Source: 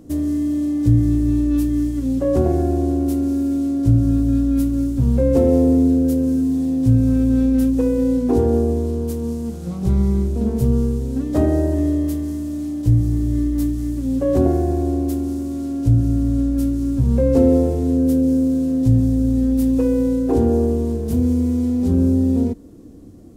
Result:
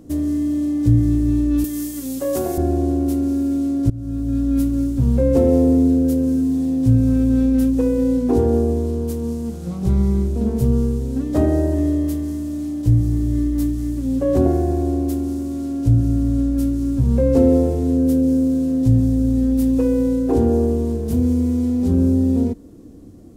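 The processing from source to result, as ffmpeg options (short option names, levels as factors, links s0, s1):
-filter_complex "[0:a]asettb=1/sr,asplit=3[s0][s1][s2];[s0]atrim=end=1.644[s3];[s1]atrim=start=1.64:end=2.58,asetpts=PTS-STARTPTS,afade=t=in:d=0.004:c=qsin,afade=t=out:st=0.936:d=0.004:c=qsin,aemphasis=mode=production:type=riaa[s4];[s2]atrim=start=2.576[s5];[s3][s4]acrossfade=d=0.004:c1=hsin:c2=qsin[s6];[s6][s5]acrossfade=d=0.004:c1=qsin:c2=hsin,asplit=2[s7][s8];[s7]atrim=end=3.9,asetpts=PTS-STARTPTS,afade=t=out:st=3.896:d=0.004:c=hsin:silence=0.0841395[s9];[s8]atrim=start=3.9,asetpts=PTS-STARTPTS,afade=t=in:d=0.66:silence=0.0841395[s10];[s9][s10]concat=n=2:v=0:a=1"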